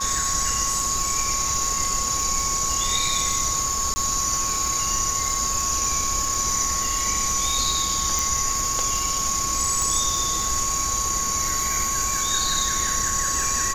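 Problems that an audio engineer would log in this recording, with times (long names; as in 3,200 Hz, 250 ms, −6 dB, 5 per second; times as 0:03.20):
surface crackle 160 per second −28 dBFS
whistle 1,100 Hz −28 dBFS
0:03.94–0:03.96: drop-out 20 ms
0:08.19: click
0:09.82: click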